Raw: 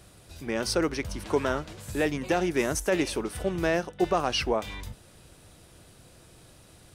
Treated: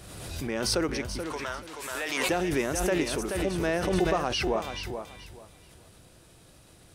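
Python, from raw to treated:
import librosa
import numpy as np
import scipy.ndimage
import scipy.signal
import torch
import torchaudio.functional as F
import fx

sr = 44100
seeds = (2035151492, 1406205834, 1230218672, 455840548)

p1 = fx.bessel_highpass(x, sr, hz=1000.0, order=2, at=(1.22, 2.29))
p2 = p1 + fx.echo_feedback(p1, sr, ms=430, feedback_pct=22, wet_db=-8, dry=0)
p3 = fx.pre_swell(p2, sr, db_per_s=34.0)
y = p3 * librosa.db_to_amplitude(-2.5)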